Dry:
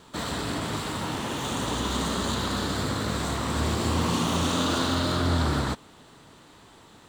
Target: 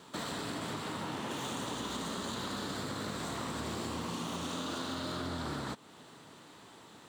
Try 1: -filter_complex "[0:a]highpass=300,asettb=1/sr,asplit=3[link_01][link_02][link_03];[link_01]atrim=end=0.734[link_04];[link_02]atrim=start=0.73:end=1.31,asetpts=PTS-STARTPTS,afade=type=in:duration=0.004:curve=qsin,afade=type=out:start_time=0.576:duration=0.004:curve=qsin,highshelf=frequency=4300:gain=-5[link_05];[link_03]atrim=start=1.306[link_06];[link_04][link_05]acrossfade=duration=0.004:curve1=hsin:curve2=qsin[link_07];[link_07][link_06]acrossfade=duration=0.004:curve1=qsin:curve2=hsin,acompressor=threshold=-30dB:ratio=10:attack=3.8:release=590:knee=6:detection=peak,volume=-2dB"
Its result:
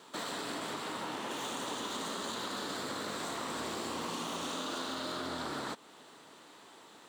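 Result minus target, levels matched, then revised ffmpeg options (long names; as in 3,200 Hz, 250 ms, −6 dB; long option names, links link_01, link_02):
125 Hz band −9.0 dB
-filter_complex "[0:a]highpass=130,asettb=1/sr,asplit=3[link_01][link_02][link_03];[link_01]atrim=end=0.734[link_04];[link_02]atrim=start=0.73:end=1.31,asetpts=PTS-STARTPTS,afade=type=in:duration=0.004:curve=qsin,afade=type=out:start_time=0.576:duration=0.004:curve=qsin,highshelf=frequency=4300:gain=-5[link_05];[link_03]atrim=start=1.306[link_06];[link_04][link_05]acrossfade=duration=0.004:curve1=hsin:curve2=qsin[link_07];[link_07][link_06]acrossfade=duration=0.004:curve1=qsin:curve2=hsin,acompressor=threshold=-30dB:ratio=10:attack=3.8:release=590:knee=6:detection=peak,volume=-2dB"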